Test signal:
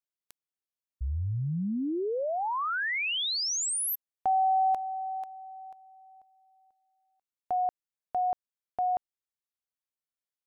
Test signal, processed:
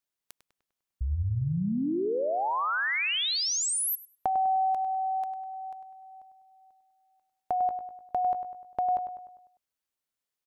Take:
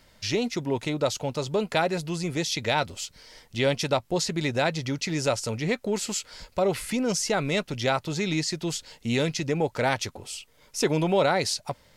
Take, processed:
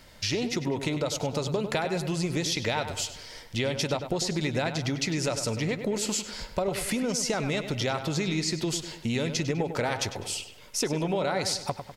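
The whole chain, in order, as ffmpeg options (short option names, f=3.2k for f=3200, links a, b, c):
-filter_complex "[0:a]acompressor=threshold=-32dB:ratio=6:attack=18:release=185:knee=6:detection=peak,asplit=2[a][b];[b]adelay=100,lowpass=f=3.5k:p=1,volume=-9dB,asplit=2[c][d];[d]adelay=100,lowpass=f=3.5k:p=1,volume=0.51,asplit=2[e][f];[f]adelay=100,lowpass=f=3.5k:p=1,volume=0.51,asplit=2[g][h];[h]adelay=100,lowpass=f=3.5k:p=1,volume=0.51,asplit=2[i][j];[j]adelay=100,lowpass=f=3.5k:p=1,volume=0.51,asplit=2[k][l];[l]adelay=100,lowpass=f=3.5k:p=1,volume=0.51[m];[a][c][e][g][i][k][m]amix=inputs=7:normalize=0,volume=5dB"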